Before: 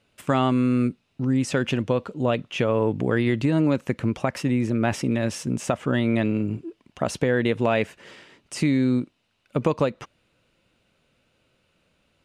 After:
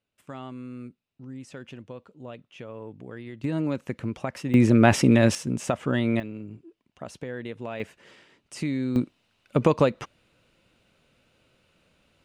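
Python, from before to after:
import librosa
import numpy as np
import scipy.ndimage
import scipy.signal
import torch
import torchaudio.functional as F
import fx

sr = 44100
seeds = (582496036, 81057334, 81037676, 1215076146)

y = fx.gain(x, sr, db=fx.steps((0.0, -18.0), (3.44, -6.5), (4.54, 6.0), (5.35, -2.0), (6.2, -13.5), (7.8, -7.0), (8.96, 2.0)))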